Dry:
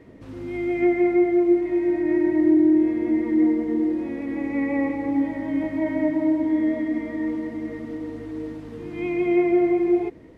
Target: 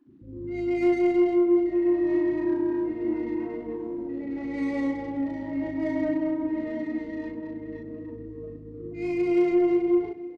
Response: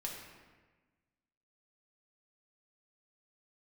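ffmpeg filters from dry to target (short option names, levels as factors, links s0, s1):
-filter_complex "[0:a]afftfilt=real='re*gte(hypot(re,im),0.0251)':imag='im*gte(hypot(re,im),0.0251)':win_size=1024:overlap=0.75,acrusher=bits=10:mix=0:aa=0.000001,asplit=2[s0][s1];[s1]aecho=0:1:299|598|897|1196:0.141|0.0664|0.0312|0.0147[s2];[s0][s2]amix=inputs=2:normalize=0,aeval=exprs='0.355*(cos(1*acos(clip(val(0)/0.355,-1,1)))-cos(1*PI/2))+0.0141*(cos(5*acos(clip(val(0)/0.355,-1,1)))-cos(5*PI/2))':c=same,adynamicsmooth=sensitivity=5.5:basefreq=1900,asplit=2[s3][s4];[s4]adelay=37,volume=0.794[s5];[s3][s5]amix=inputs=2:normalize=0,asplit=2[s6][s7];[s7]aecho=0:1:98:0.158[s8];[s6][s8]amix=inputs=2:normalize=0,volume=0.447"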